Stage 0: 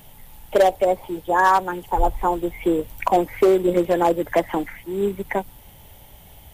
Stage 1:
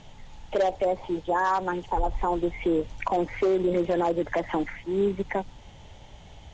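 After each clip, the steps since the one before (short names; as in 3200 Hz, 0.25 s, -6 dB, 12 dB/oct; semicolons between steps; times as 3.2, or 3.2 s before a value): Chebyshev low-pass 6900 Hz, order 5; limiter -16.5 dBFS, peak gain reduction 10 dB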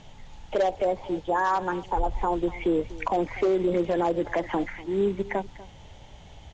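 echo 0.244 s -18.5 dB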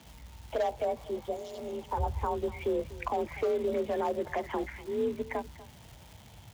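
spectral repair 1.01–1.8, 710–2800 Hz; crackle 510/s -38 dBFS; frequency shift +42 Hz; gain -6 dB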